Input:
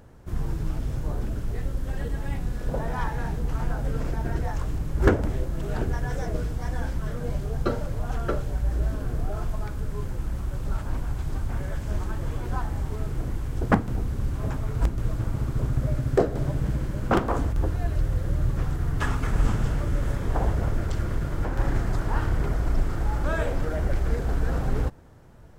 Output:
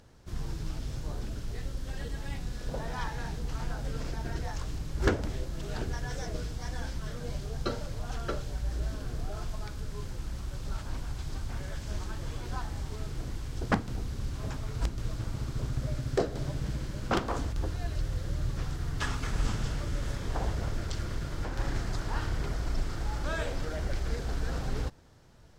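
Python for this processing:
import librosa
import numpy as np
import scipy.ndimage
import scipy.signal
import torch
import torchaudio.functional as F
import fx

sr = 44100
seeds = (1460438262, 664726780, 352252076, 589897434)

y = fx.peak_eq(x, sr, hz=4700.0, db=12.5, octaves=1.8)
y = y * librosa.db_to_amplitude(-7.5)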